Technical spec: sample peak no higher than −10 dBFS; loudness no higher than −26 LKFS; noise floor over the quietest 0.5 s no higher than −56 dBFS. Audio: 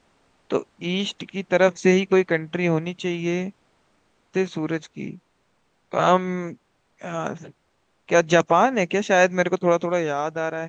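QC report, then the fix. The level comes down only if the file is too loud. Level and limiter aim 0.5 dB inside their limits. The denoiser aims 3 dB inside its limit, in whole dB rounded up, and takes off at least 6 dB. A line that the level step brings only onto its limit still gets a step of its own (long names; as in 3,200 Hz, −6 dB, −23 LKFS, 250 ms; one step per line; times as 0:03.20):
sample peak −3.0 dBFS: out of spec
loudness −22.5 LKFS: out of spec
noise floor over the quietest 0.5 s −67 dBFS: in spec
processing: level −4 dB
brickwall limiter −10.5 dBFS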